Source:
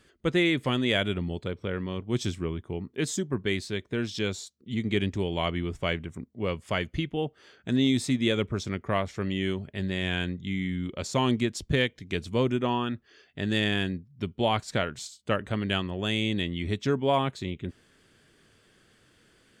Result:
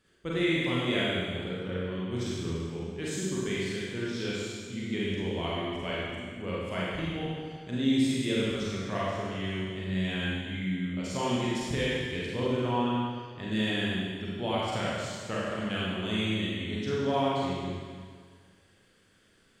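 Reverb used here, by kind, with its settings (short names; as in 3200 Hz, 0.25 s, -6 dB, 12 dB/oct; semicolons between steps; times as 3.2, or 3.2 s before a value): Schroeder reverb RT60 1.8 s, combs from 33 ms, DRR -7 dB; gain -10 dB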